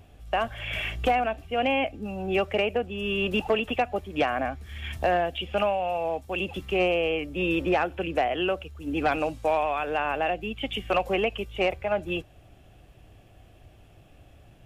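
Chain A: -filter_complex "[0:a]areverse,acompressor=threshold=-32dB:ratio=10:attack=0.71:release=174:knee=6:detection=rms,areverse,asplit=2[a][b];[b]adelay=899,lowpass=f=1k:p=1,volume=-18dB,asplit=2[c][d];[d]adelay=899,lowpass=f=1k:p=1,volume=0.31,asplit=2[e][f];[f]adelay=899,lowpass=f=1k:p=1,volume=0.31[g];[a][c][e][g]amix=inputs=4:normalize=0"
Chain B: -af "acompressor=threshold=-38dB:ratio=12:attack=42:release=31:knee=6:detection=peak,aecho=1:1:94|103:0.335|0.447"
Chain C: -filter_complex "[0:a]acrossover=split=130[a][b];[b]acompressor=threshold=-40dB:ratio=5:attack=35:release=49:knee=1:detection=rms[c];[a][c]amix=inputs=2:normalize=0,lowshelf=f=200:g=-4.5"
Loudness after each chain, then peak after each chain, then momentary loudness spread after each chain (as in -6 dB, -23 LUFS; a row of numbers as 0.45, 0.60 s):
-39.0, -34.5, -38.5 LUFS; -28.0, -17.5, -19.0 dBFS; 16, 20, 20 LU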